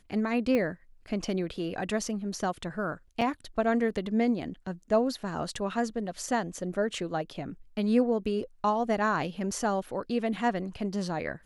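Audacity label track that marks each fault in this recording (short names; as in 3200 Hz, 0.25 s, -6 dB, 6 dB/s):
0.550000	0.550000	pop -17 dBFS
3.210000	3.220000	gap 5.5 ms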